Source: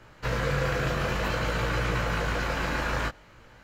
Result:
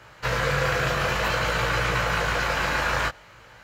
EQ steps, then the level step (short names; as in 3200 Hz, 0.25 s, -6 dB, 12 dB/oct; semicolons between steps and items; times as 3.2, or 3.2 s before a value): HPF 110 Hz 6 dB/oct; bell 260 Hz -9.5 dB 1.4 oct; +6.5 dB